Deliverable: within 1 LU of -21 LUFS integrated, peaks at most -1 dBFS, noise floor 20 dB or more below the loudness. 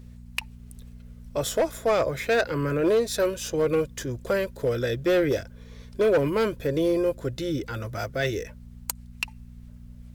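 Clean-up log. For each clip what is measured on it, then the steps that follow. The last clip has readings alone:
clipped 1.4%; flat tops at -16.5 dBFS; hum 60 Hz; harmonics up to 240 Hz; hum level -42 dBFS; loudness -26.5 LUFS; peak -16.5 dBFS; loudness target -21.0 LUFS
-> clip repair -16.5 dBFS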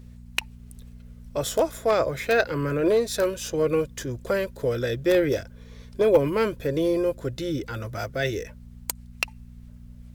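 clipped 0.0%; hum 60 Hz; harmonics up to 240 Hz; hum level -42 dBFS
-> de-hum 60 Hz, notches 4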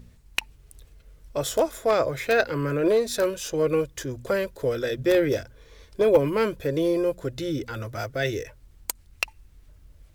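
hum none; loudness -25.5 LUFS; peak -7.5 dBFS; loudness target -21.0 LUFS
-> gain +4.5 dB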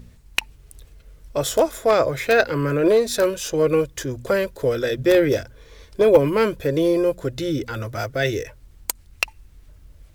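loudness -21.0 LUFS; peak -3.0 dBFS; noise floor -50 dBFS

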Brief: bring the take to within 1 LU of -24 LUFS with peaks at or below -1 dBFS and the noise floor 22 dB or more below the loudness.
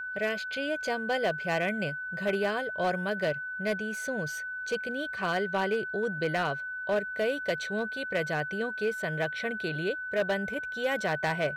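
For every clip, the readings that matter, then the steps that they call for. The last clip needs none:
clipped 1.0%; flat tops at -21.5 dBFS; steady tone 1500 Hz; tone level -34 dBFS; loudness -30.5 LUFS; peak -21.5 dBFS; loudness target -24.0 LUFS
-> clip repair -21.5 dBFS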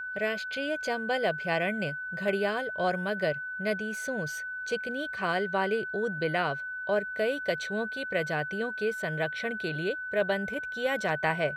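clipped 0.0%; steady tone 1500 Hz; tone level -34 dBFS
-> notch 1500 Hz, Q 30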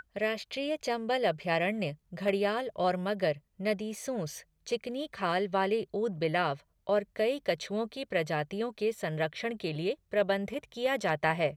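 steady tone none; loudness -32.0 LUFS; peak -13.5 dBFS; loudness target -24.0 LUFS
-> gain +8 dB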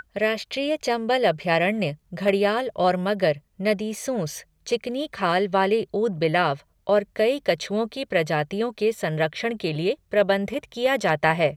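loudness -24.0 LUFS; peak -5.5 dBFS; noise floor -65 dBFS

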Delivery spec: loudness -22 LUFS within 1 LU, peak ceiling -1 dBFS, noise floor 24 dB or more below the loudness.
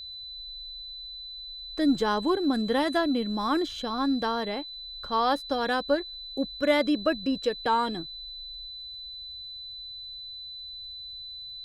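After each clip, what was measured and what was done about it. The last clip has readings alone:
ticks 17/s; steady tone 4000 Hz; tone level -38 dBFS; loudness -29.5 LUFS; peak -9.0 dBFS; loudness target -22.0 LUFS
-> de-click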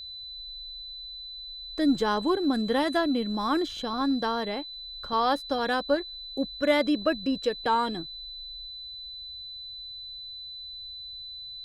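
ticks 0/s; steady tone 4000 Hz; tone level -38 dBFS
-> notch 4000 Hz, Q 30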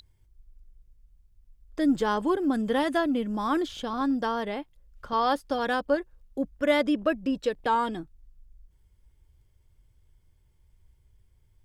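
steady tone none; loudness -27.5 LUFS; peak -9.5 dBFS; loudness target -22.0 LUFS
-> gain +5.5 dB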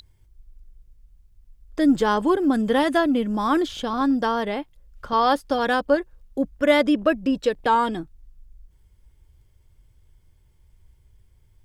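loudness -22.0 LUFS; peak -4.0 dBFS; noise floor -58 dBFS

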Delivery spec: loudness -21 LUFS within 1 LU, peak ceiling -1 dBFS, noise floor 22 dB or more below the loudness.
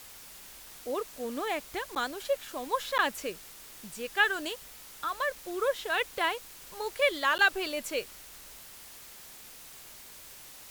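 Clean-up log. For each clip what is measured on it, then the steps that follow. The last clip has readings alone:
dropouts 3; longest dropout 9.7 ms; noise floor -49 dBFS; noise floor target -53 dBFS; loudness -31.0 LUFS; peak -11.5 dBFS; loudness target -21.0 LUFS
-> interpolate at 1.95/2.98/7.38, 9.7 ms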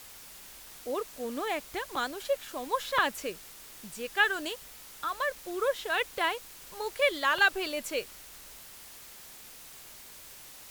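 dropouts 0; noise floor -49 dBFS; noise floor target -53 dBFS
-> denoiser 6 dB, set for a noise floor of -49 dBFS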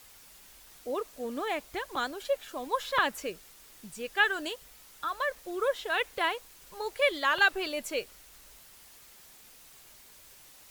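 noise floor -55 dBFS; loudness -31.0 LUFS; peak -11.5 dBFS; loudness target -21.0 LUFS
-> gain +10 dB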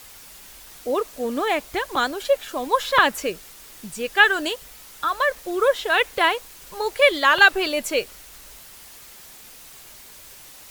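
loudness -21.0 LUFS; peak -1.5 dBFS; noise floor -45 dBFS

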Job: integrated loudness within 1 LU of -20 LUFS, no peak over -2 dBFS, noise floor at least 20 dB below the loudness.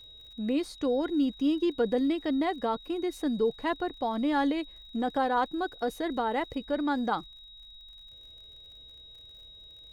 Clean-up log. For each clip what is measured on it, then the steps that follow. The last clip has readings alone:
ticks 43/s; steady tone 3800 Hz; tone level -48 dBFS; loudness -29.5 LUFS; peak -16.0 dBFS; loudness target -20.0 LUFS
-> de-click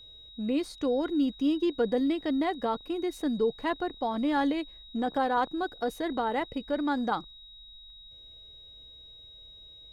ticks 0.30/s; steady tone 3800 Hz; tone level -48 dBFS
-> notch 3800 Hz, Q 30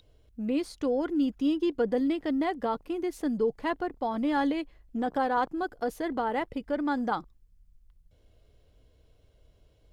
steady tone none; loudness -30.0 LUFS; peak -16.5 dBFS; loudness target -20.0 LUFS
-> gain +10 dB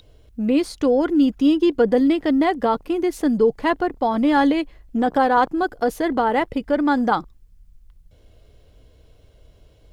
loudness -20.0 LUFS; peak -6.5 dBFS; noise floor -53 dBFS

